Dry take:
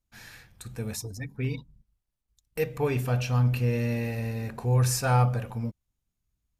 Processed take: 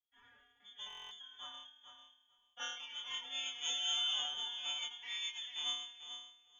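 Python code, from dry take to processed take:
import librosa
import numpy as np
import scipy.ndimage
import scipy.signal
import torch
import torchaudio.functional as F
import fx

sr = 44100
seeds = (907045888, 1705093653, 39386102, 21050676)

y = fx.rattle_buzz(x, sr, strikes_db=-30.0, level_db=-32.0)
y = fx.env_lowpass_down(y, sr, base_hz=770.0, full_db=-20.5)
y = fx.peak_eq(y, sr, hz=510.0, db=-8.0, octaves=0.88)
y = fx.resonator_bank(y, sr, root=39, chord='fifth', decay_s=0.76)
y = fx.echo_feedback(y, sr, ms=444, feedback_pct=15, wet_db=-9)
y = fx.freq_invert(y, sr, carrier_hz=3400)
y = fx.pitch_keep_formants(y, sr, semitones=12.0)
y = fx.buffer_glitch(y, sr, at_s=(0.88,), block=1024, repeats=9)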